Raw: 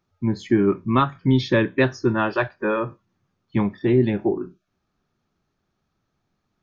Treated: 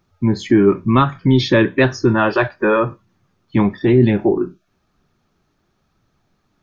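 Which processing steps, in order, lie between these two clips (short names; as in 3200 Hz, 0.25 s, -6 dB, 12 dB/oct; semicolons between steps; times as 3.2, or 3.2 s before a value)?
in parallel at +2.5 dB: limiter -17 dBFS, peak gain reduction 11 dB; on the sum: flange 0.99 Hz, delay 0.1 ms, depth 3.5 ms, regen +81%; gain +6 dB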